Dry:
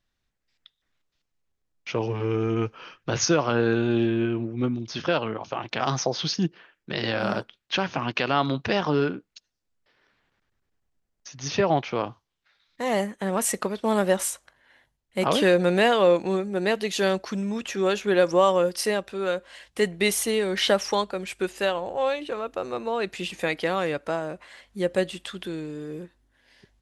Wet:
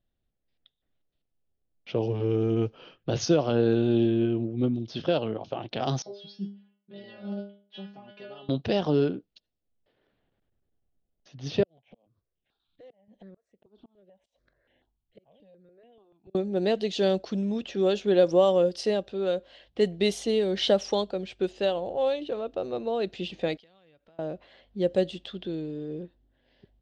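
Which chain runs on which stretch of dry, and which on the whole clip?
6.02–8.49 s: high-pass 52 Hz + inharmonic resonator 200 Hz, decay 0.45 s, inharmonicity 0.002
11.63–16.35 s: inverted gate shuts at -17 dBFS, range -32 dB + compression 3:1, threshold -49 dBFS + stepped phaser 6.9 Hz 240–4500 Hz
23.57–24.19 s: amplifier tone stack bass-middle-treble 5-5-5 + compression 10:1, threshold -51 dBFS
whole clip: low-pass 4.2 kHz 12 dB/octave; level-controlled noise filter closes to 2.6 kHz, open at -19.5 dBFS; high-order bell 1.5 kHz -11.5 dB

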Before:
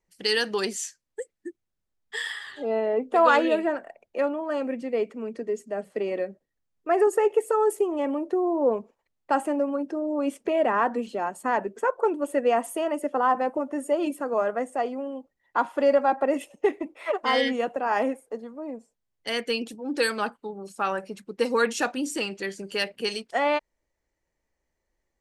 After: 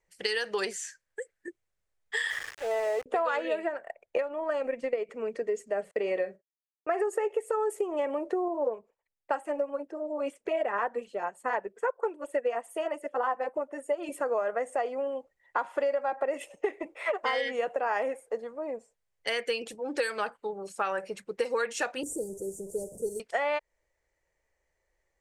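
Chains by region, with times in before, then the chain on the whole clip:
0.71–1.48 s: peaking EQ 1.6 kHz +10.5 dB 0.34 oct + compression 2.5:1, threshold -38 dBFS
2.30–3.06 s: three-band isolator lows -17 dB, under 490 Hz, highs -23 dB, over 4 kHz + small samples zeroed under -38 dBFS
3.68–5.09 s: compression 2:1, threshold -29 dBFS + transient shaper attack +9 dB, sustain -7 dB
5.91–7.03 s: gate -52 dBFS, range -32 dB + high-pass 61 Hz + doubling 43 ms -13 dB
8.48–14.09 s: LFO notch sine 9.8 Hz 490–6600 Hz + upward expansion, over -40 dBFS
22.03–23.20 s: one-bit delta coder 64 kbps, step -34.5 dBFS + inverse Chebyshev band-stop 1.3–3.6 kHz, stop band 60 dB + dynamic bell 610 Hz, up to -6 dB, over -46 dBFS, Q 2.2
whole clip: graphic EQ 250/500/2000/8000 Hz -11/+6/+6/+7 dB; compression 10:1, threshold -25 dBFS; treble shelf 4.2 kHz -6 dB

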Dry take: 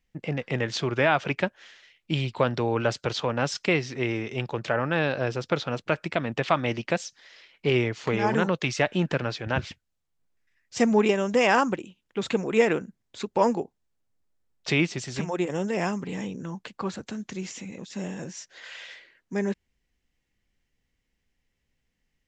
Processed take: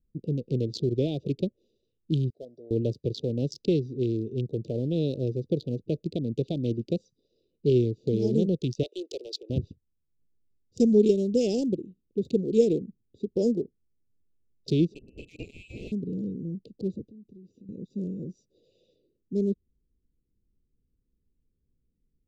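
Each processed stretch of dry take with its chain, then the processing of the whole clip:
2.30–2.71 s: two resonant band-passes 1.9 kHz, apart 3 oct + doubling 12 ms -11.5 dB
8.83–9.50 s: steep high-pass 350 Hz 48 dB/octave + tilt EQ +3 dB/octave
14.94–15.92 s: integer overflow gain 18 dB + frequency inversion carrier 2.8 kHz
17.03–17.69 s: low-pass 4.4 kHz + compression 12:1, threshold -46 dBFS
whole clip: local Wiener filter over 41 samples; elliptic band-stop 440–4000 Hz, stop band 60 dB; treble shelf 4.7 kHz -6 dB; trim +3 dB

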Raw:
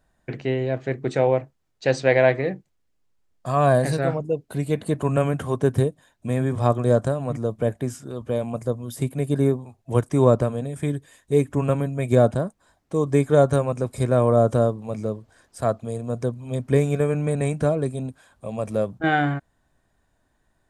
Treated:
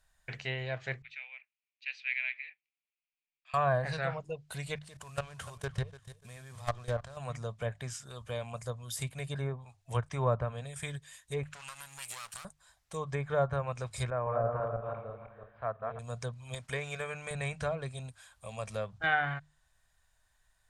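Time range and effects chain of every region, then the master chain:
1.02–3.54 s: ladder band-pass 2.6 kHz, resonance 75% + distance through air 160 m
4.75–7.17 s: CVSD coder 64 kbps + level held to a coarse grid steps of 18 dB + feedback delay 293 ms, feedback 25%, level -16 dB
11.43–12.45 s: comb filter that takes the minimum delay 0.71 ms + tilt EQ +4 dB/octave + compression, threshold -38 dBFS
14.10–15.99 s: backward echo that repeats 167 ms, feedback 47%, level -2.5 dB + Gaussian low-pass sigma 4.6 samples + bass shelf 300 Hz -8.5 dB
16.54–17.31 s: expander -36 dBFS + bass shelf 240 Hz -10.5 dB + upward compressor, threshold -26 dBFS
whole clip: hum notches 50/100/150 Hz; low-pass that closes with the level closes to 1.5 kHz, closed at -15 dBFS; amplifier tone stack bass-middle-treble 10-0-10; trim +3.5 dB

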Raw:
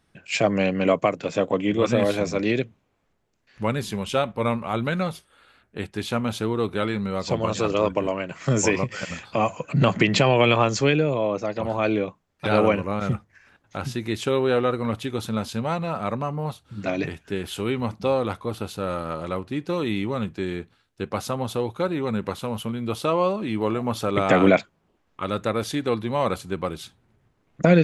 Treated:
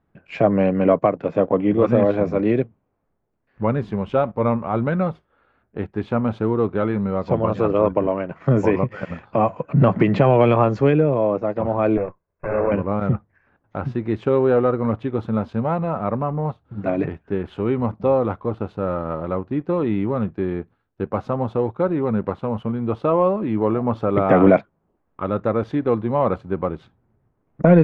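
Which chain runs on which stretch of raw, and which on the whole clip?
11.97–12.72 s: comb filter that takes the minimum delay 1.9 ms + brick-wall FIR low-pass 2.7 kHz + compression 2:1, threshold -24 dBFS
whole clip: waveshaping leveller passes 1; low-pass 1.2 kHz 12 dB/octave; trim +1 dB

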